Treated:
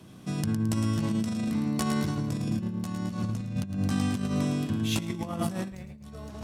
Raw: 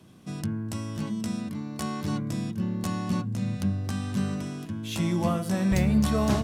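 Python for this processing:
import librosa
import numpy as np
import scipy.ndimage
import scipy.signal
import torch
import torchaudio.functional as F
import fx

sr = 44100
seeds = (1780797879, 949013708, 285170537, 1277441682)

y = fx.echo_feedback(x, sr, ms=109, feedback_pct=44, wet_db=-7.0)
y = fx.over_compress(y, sr, threshold_db=-29.0, ratio=-0.5)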